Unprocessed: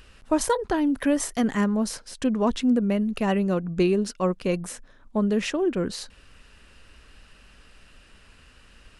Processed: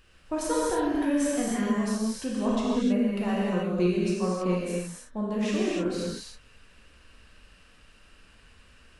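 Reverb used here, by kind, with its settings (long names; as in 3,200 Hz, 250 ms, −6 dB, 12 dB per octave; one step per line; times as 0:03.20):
reverb whose tail is shaped and stops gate 340 ms flat, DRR −6.5 dB
level −10 dB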